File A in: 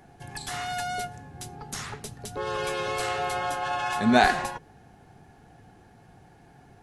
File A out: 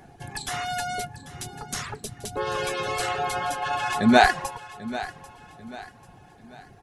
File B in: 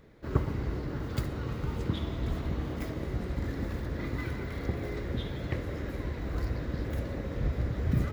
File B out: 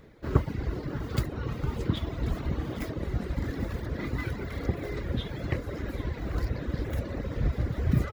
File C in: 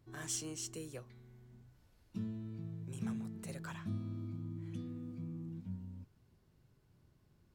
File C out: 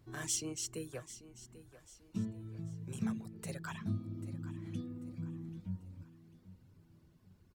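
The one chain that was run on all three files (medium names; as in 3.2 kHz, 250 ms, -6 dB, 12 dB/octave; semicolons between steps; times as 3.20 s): reverb removal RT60 0.92 s; feedback delay 791 ms, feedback 39%, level -15.5 dB; trim +4 dB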